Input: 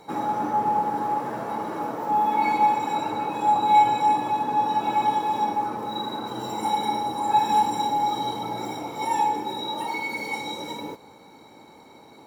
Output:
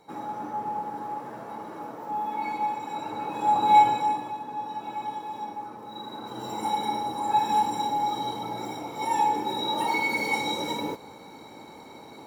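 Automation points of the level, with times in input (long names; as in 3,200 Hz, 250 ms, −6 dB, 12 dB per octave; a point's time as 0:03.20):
0:02.87 −8.5 dB
0:03.77 +0.5 dB
0:04.40 −11 dB
0:05.83 −11 dB
0:06.53 −3 dB
0:08.87 −3 dB
0:09.92 +3.5 dB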